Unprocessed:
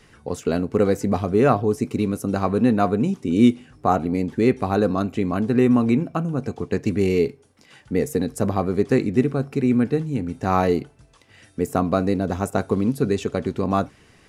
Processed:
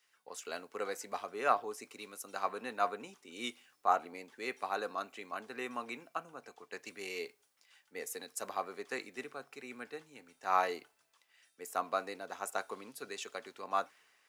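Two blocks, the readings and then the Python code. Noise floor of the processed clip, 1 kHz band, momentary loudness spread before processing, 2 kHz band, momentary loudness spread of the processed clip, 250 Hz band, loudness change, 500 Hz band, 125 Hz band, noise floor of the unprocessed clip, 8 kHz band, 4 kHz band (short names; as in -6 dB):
-75 dBFS, -9.0 dB, 8 LU, -8.0 dB, 15 LU, -30.5 dB, -17.0 dB, -19.0 dB, -39.5 dB, -54 dBFS, -6.5 dB, -7.5 dB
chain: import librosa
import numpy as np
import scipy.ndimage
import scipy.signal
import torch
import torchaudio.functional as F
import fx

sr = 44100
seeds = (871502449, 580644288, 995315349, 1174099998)

y = scipy.signal.sosfilt(scipy.signal.butter(2, 930.0, 'highpass', fs=sr, output='sos'), x)
y = fx.dmg_noise_colour(y, sr, seeds[0], colour='white', level_db=-69.0)
y = fx.band_widen(y, sr, depth_pct=40)
y = y * librosa.db_to_amplitude(-7.5)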